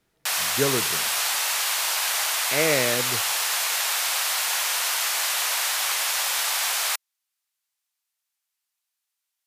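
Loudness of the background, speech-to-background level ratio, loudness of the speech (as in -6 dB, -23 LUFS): -22.5 LUFS, -5.0 dB, -27.5 LUFS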